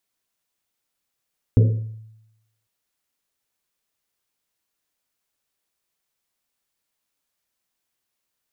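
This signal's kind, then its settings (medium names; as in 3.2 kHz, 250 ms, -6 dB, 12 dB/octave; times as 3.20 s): Risset drum, pitch 110 Hz, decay 0.93 s, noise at 440 Hz, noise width 200 Hz, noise 15%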